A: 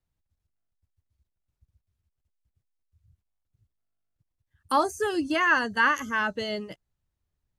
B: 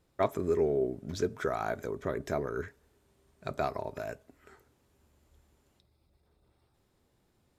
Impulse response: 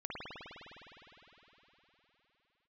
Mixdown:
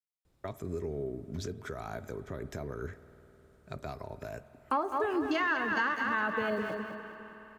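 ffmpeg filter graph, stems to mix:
-filter_complex "[0:a]afwtdn=0.0141,aeval=exprs='val(0)*gte(abs(val(0)),0.00335)':channel_layout=same,adynamicequalizer=threshold=0.0158:dfrequency=2000:dqfactor=0.7:tfrequency=2000:tqfactor=0.7:attack=5:release=100:ratio=0.375:range=1.5:mode=cutabove:tftype=highshelf,volume=0dB,asplit=3[link_01][link_02][link_03];[link_02]volume=-14.5dB[link_04];[link_03]volume=-7dB[link_05];[1:a]lowshelf=frequency=120:gain=7.5,acrossover=split=220|3000[link_06][link_07][link_08];[link_07]acompressor=threshold=-37dB:ratio=2[link_09];[link_06][link_09][link_08]amix=inputs=3:normalize=0,alimiter=level_in=0.5dB:limit=-24dB:level=0:latency=1:release=141,volume=-0.5dB,adelay=250,volume=-3dB,asplit=2[link_10][link_11];[link_11]volume=-16.5dB[link_12];[2:a]atrim=start_sample=2205[link_13];[link_04][link_12]amix=inputs=2:normalize=0[link_14];[link_14][link_13]afir=irnorm=-1:irlink=0[link_15];[link_05]aecho=0:1:206|412|618|824|1030|1236:1|0.42|0.176|0.0741|0.0311|0.0131[link_16];[link_01][link_10][link_15][link_16]amix=inputs=4:normalize=0,acompressor=threshold=-27dB:ratio=6"

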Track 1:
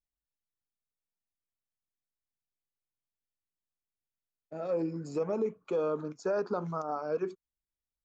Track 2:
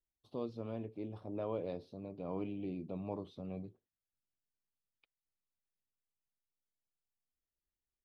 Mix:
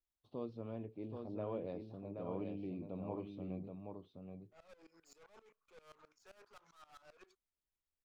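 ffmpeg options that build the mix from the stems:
ffmpeg -i stem1.wav -i stem2.wav -filter_complex "[0:a]highpass=1100,aeval=exprs='(tanh(447*val(0)+0.35)-tanh(0.35))/447':channel_layout=same,aeval=exprs='val(0)*pow(10,-20*if(lt(mod(-7.6*n/s,1),2*abs(-7.6)/1000),1-mod(-7.6*n/s,1)/(2*abs(-7.6)/1000),(mod(-7.6*n/s,1)-2*abs(-7.6)/1000)/(1-2*abs(-7.6)/1000))/20)':channel_layout=same,volume=-0.5dB[link_01];[1:a]bass=frequency=250:gain=1,treble=frequency=4000:gain=-9,volume=-3.5dB,asplit=2[link_02][link_03];[link_03]volume=-5dB,aecho=0:1:776:1[link_04];[link_01][link_02][link_04]amix=inputs=3:normalize=0" out.wav

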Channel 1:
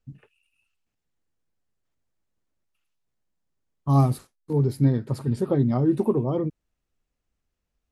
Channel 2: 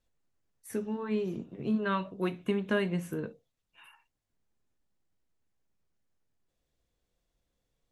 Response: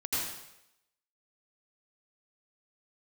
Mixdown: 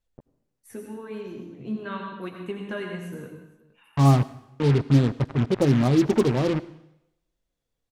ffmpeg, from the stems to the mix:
-filter_complex "[0:a]lowpass=2600,acrusher=bits=4:mix=0:aa=0.5,adelay=100,volume=1.5dB,asplit=2[link_01][link_02];[link_02]volume=-24dB[link_03];[1:a]flanger=delay=0.9:depth=9.8:regen=52:speed=0.83:shape=triangular,volume=-2dB,asplit=3[link_04][link_05][link_06];[link_05]volume=-6.5dB[link_07];[link_06]volume=-20dB[link_08];[2:a]atrim=start_sample=2205[link_09];[link_03][link_07]amix=inputs=2:normalize=0[link_10];[link_10][link_09]afir=irnorm=-1:irlink=0[link_11];[link_08]aecho=0:1:466:1[link_12];[link_01][link_04][link_11][link_12]amix=inputs=4:normalize=0"

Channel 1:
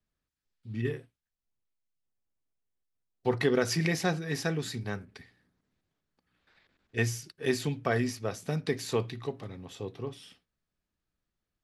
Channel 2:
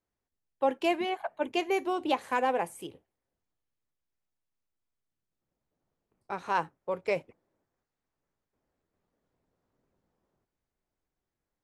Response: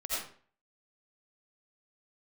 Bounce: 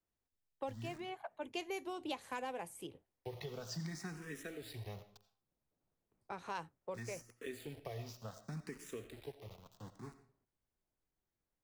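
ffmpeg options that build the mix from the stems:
-filter_complex "[0:a]acompressor=threshold=-31dB:ratio=2.5,aeval=exprs='val(0)*gte(abs(val(0)),0.01)':channel_layout=same,asplit=2[link_01][link_02];[link_02]afreqshift=0.66[link_03];[link_01][link_03]amix=inputs=2:normalize=1,volume=-9.5dB,asplit=3[link_04][link_05][link_06];[link_05]volume=-15.5dB[link_07];[1:a]volume=-5.5dB[link_08];[link_06]apad=whole_len=512995[link_09];[link_08][link_09]sidechaincompress=threshold=-50dB:ratio=4:attack=8.1:release=896[link_10];[2:a]atrim=start_sample=2205[link_11];[link_07][link_11]afir=irnorm=-1:irlink=0[link_12];[link_04][link_10][link_12]amix=inputs=3:normalize=0,lowshelf=frequency=160:gain=3.5,acrossover=split=130|3000[link_13][link_14][link_15];[link_14]acompressor=threshold=-42dB:ratio=3[link_16];[link_13][link_16][link_15]amix=inputs=3:normalize=0"

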